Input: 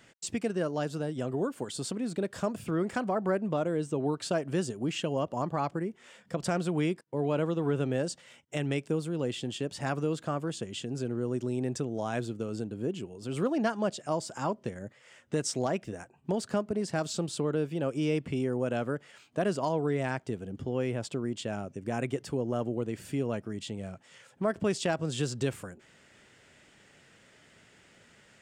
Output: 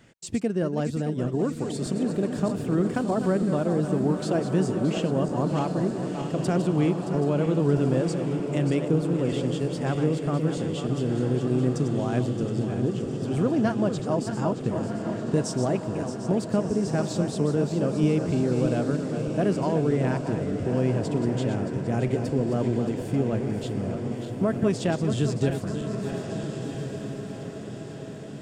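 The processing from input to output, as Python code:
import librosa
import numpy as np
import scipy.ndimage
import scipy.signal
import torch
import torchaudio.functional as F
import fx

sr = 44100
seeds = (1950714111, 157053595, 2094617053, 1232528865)

y = fx.reverse_delay_fb(x, sr, ms=311, feedback_pct=72, wet_db=-8.5)
y = fx.low_shelf(y, sr, hz=450.0, db=10.0)
y = fx.echo_diffused(y, sr, ms=1493, feedback_pct=53, wet_db=-8.0)
y = y * 10.0 ** (-1.5 / 20.0)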